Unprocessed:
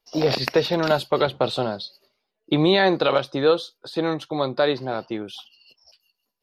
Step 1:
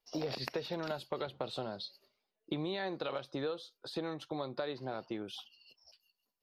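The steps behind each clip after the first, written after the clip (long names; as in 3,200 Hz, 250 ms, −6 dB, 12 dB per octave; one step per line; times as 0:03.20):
downward compressor 6 to 1, threshold −27 dBFS, peak gain reduction 13.5 dB
level −7.5 dB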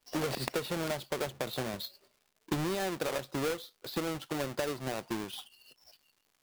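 each half-wave held at its own peak
surface crackle 180 per second −54 dBFS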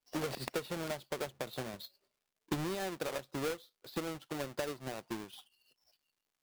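expander for the loud parts 1.5 to 1, over −49 dBFS
level −2 dB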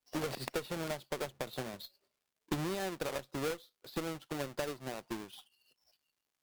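harmonic generator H 4 −20 dB, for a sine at −24 dBFS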